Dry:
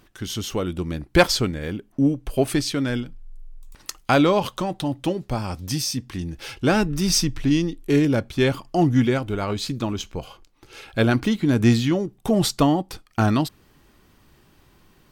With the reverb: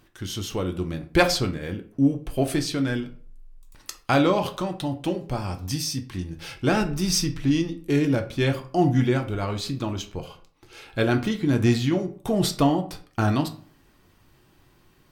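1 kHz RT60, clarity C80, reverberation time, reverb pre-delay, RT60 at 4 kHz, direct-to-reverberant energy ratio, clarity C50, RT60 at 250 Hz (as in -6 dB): 0.45 s, 17.5 dB, 0.45 s, 4 ms, 0.30 s, 5.5 dB, 13.0 dB, 0.55 s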